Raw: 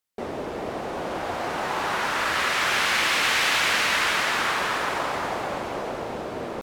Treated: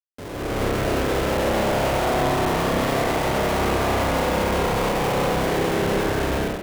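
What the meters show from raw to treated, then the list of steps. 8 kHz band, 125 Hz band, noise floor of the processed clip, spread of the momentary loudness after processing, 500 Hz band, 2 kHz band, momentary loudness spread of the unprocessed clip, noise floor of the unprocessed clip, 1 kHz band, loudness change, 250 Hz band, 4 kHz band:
-1.5 dB, +15.5 dB, -33 dBFS, 2 LU, +9.0 dB, -4.5 dB, 12 LU, -33 dBFS, +2.5 dB, +2.0 dB, +11.5 dB, -4.5 dB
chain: median filter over 25 samples; mistuned SSB -160 Hz 500–2200 Hz; peak limiter -27.5 dBFS, peak gain reduction 9.5 dB; Schmitt trigger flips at -38.5 dBFS; spring tank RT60 3.4 s, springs 30 ms, chirp 45 ms, DRR -2 dB; level rider gain up to 11 dB

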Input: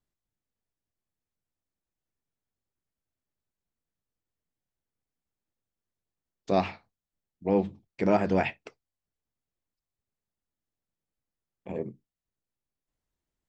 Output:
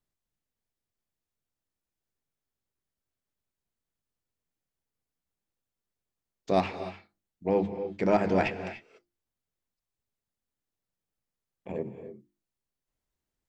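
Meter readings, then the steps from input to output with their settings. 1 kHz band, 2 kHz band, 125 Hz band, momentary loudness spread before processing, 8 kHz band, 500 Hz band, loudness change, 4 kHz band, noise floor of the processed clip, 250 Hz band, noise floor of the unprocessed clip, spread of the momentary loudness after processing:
+0.5 dB, +0.5 dB, -1.5 dB, 12 LU, no reading, +0.5 dB, -1.0 dB, +1.0 dB, under -85 dBFS, -1.5 dB, under -85 dBFS, 16 LU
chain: tracing distortion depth 0.027 ms; hum notches 50/100/150/200/250/300/350 Hz; gated-style reverb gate 320 ms rising, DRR 10 dB

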